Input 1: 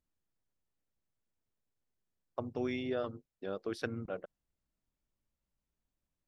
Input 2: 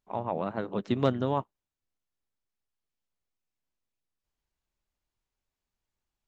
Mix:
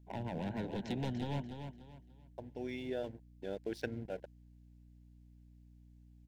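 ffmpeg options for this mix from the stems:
-filter_complex "[0:a]aeval=exprs='sgn(val(0))*max(abs(val(0))-0.00188,0)':c=same,volume=-1dB[a];[1:a]acrossover=split=300|1500[b][c][d];[b]acompressor=threshold=-33dB:ratio=4[e];[c]acompressor=threshold=-42dB:ratio=4[f];[d]acompressor=threshold=-46dB:ratio=4[g];[e][f][g]amix=inputs=3:normalize=0,asoftclip=type=hard:threshold=-34.5dB,volume=1dB,asplit=3[h][i][j];[i]volume=-7.5dB[k];[j]apad=whole_len=276794[l];[a][l]sidechaincompress=threshold=-55dB:ratio=8:attack=16:release=1340[m];[k]aecho=0:1:292|584|876|1168:1|0.3|0.09|0.027[n];[m][h][n]amix=inputs=3:normalize=0,aeval=exprs='val(0)+0.00126*(sin(2*PI*60*n/s)+sin(2*PI*2*60*n/s)/2+sin(2*PI*3*60*n/s)/3+sin(2*PI*4*60*n/s)/4+sin(2*PI*5*60*n/s)/5)':c=same,asuperstop=centerf=1200:order=4:qfactor=2.1"

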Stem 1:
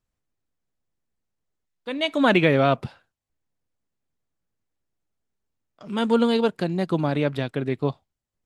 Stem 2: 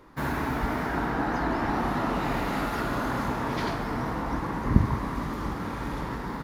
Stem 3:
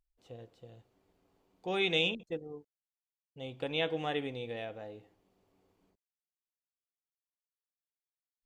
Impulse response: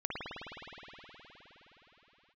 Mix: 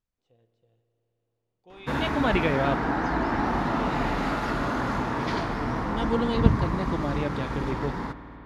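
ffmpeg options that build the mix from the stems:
-filter_complex "[0:a]volume=-7dB[a];[1:a]adelay=1700,volume=0dB,asplit=3[b][c][d];[c]volume=-15.5dB[e];[d]volume=-22.5dB[f];[2:a]volume=-17.5dB,asplit=2[g][h];[h]volume=-12dB[i];[3:a]atrim=start_sample=2205[j];[e][i]amix=inputs=2:normalize=0[k];[k][j]afir=irnorm=-1:irlink=0[l];[f]aecho=0:1:239:1[m];[a][b][g][l][m]amix=inputs=5:normalize=0,lowpass=7.4k"

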